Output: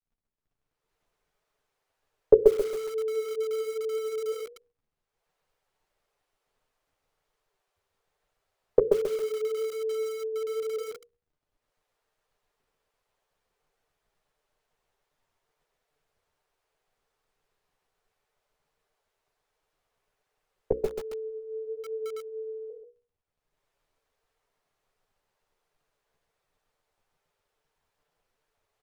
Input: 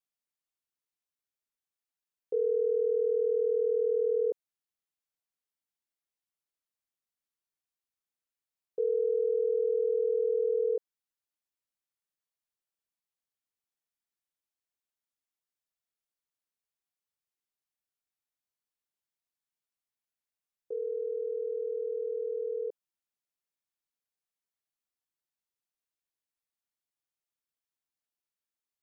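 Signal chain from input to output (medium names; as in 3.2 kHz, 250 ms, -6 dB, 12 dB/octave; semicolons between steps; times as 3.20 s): recorder AGC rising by 32 dB/s; elliptic high-pass 410 Hz, stop band 50 dB; crackle 43 per s -54 dBFS; gate -23 dBFS, range -7 dB; tilt EQ -4.5 dB/octave; hum notches 60/120/180/240/300/360/420/480/540 Hz; chorus voices 4, 1.2 Hz, delay 10 ms, depth 3.5 ms; on a send: delay 132 ms -5 dB; on the sum: bit-crushed delay 137 ms, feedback 35%, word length 6-bit, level -6.5 dB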